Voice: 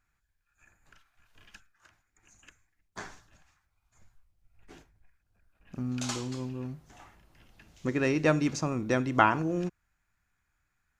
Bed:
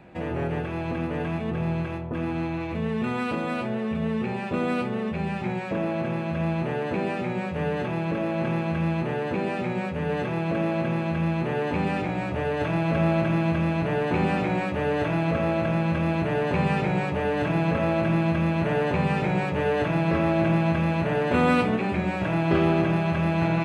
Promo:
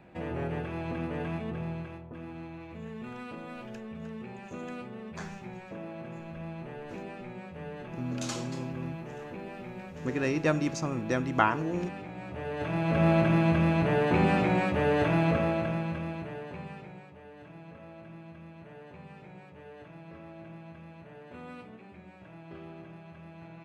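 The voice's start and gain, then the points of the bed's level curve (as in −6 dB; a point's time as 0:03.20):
2.20 s, −2.0 dB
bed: 0:01.34 −5.5 dB
0:02.18 −14 dB
0:12.12 −14 dB
0:13.10 −0.5 dB
0:15.25 −0.5 dB
0:17.12 −24.5 dB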